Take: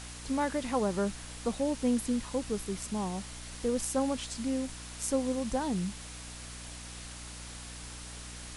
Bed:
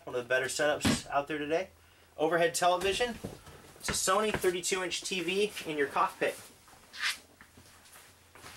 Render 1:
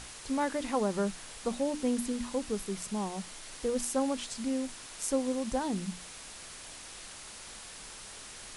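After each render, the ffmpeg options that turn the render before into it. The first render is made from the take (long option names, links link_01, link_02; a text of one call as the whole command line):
ffmpeg -i in.wav -af "bandreject=frequency=60:width_type=h:width=6,bandreject=frequency=120:width_type=h:width=6,bandreject=frequency=180:width_type=h:width=6,bandreject=frequency=240:width_type=h:width=6,bandreject=frequency=300:width_type=h:width=6" out.wav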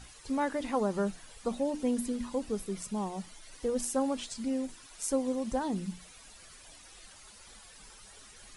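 ffmpeg -i in.wav -af "afftdn=noise_reduction=12:noise_floor=-47" out.wav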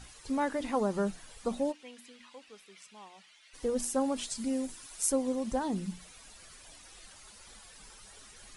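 ffmpeg -i in.wav -filter_complex "[0:a]asplit=3[link_01][link_02][link_03];[link_01]afade=type=out:start_time=1.71:duration=0.02[link_04];[link_02]bandpass=frequency=2600:width_type=q:width=1.5,afade=type=in:start_time=1.71:duration=0.02,afade=type=out:start_time=3.53:duration=0.02[link_05];[link_03]afade=type=in:start_time=3.53:duration=0.02[link_06];[link_04][link_05][link_06]amix=inputs=3:normalize=0,asettb=1/sr,asplit=3[link_07][link_08][link_09];[link_07]atrim=end=4.164[link_10];[link_08]atrim=start=4.16:end=5.12,asetpts=PTS-STARTPTS,afade=type=in:duration=0.004:curve=qsin,afade=type=out:start_time=0.956:duration=0.004:curve=qsin,highshelf=frequency=8100:gain=10.5[link_11];[link_09]atrim=start=5.116[link_12];[link_10][link_11]acrossfade=duration=0.004:curve1=hsin:curve2=qsin[link_13];[link_13][link_12]acrossfade=duration=0.004:curve1=qsin:curve2=hsin" out.wav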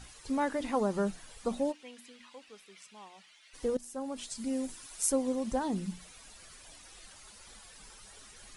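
ffmpeg -i in.wav -filter_complex "[0:a]asplit=2[link_01][link_02];[link_01]atrim=end=3.77,asetpts=PTS-STARTPTS,afade=type=out:start_time=3.766:duration=0.004:curve=hsin:silence=0.141254[link_03];[link_02]atrim=start=3.77,asetpts=PTS-STARTPTS,afade=type=in:duration=0.91:silence=0.141254[link_04];[link_03][link_04]concat=n=2:v=0:a=1" out.wav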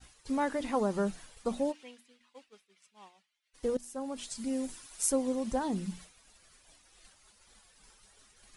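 ffmpeg -i in.wav -af "agate=range=-33dB:threshold=-45dB:ratio=3:detection=peak" out.wav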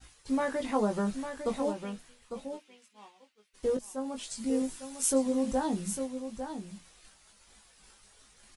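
ffmpeg -i in.wav -filter_complex "[0:a]asplit=2[link_01][link_02];[link_02]adelay=19,volume=-4.5dB[link_03];[link_01][link_03]amix=inputs=2:normalize=0,aecho=1:1:852:0.376" out.wav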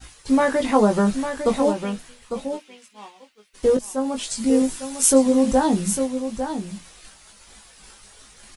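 ffmpeg -i in.wav -af "volume=11.5dB" out.wav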